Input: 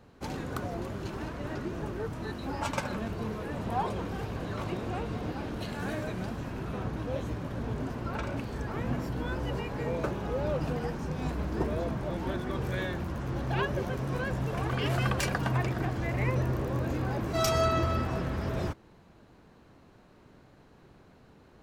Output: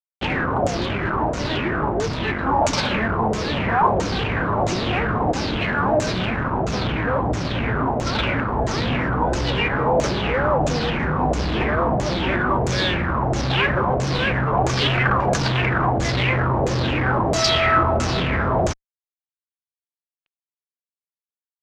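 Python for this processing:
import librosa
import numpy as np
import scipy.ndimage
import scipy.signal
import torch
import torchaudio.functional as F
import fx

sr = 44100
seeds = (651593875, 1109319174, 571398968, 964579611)

y = fx.fuzz(x, sr, gain_db=36.0, gate_db=-43.0)
y = fx.filter_lfo_lowpass(y, sr, shape='saw_down', hz=1.5, low_hz=620.0, high_hz=7300.0, q=4.9)
y = y * librosa.db_to_amplitude(-6.0)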